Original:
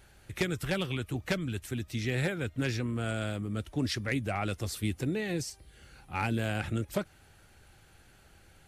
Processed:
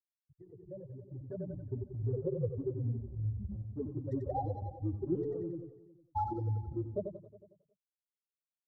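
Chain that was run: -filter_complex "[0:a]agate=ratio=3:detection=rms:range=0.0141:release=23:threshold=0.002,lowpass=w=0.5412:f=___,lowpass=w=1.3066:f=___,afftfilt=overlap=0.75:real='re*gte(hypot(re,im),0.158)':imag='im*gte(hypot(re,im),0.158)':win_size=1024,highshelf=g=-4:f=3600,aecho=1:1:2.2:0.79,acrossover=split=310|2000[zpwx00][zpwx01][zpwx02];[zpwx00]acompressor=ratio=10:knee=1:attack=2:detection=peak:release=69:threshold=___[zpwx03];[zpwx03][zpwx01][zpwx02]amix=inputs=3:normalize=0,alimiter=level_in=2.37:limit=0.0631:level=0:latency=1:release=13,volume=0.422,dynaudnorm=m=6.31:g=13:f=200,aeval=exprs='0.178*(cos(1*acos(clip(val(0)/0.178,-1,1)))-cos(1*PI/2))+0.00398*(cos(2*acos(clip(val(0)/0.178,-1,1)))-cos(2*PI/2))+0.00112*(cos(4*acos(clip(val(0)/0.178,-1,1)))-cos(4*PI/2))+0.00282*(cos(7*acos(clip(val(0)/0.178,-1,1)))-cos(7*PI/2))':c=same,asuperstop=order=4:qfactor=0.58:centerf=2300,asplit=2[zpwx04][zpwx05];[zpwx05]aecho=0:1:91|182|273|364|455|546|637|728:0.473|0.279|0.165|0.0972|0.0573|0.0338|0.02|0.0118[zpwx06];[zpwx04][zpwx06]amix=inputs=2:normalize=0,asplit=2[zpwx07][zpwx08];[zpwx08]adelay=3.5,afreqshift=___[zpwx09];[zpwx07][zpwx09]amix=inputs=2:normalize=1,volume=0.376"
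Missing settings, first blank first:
4600, 4600, 0.01, -2.5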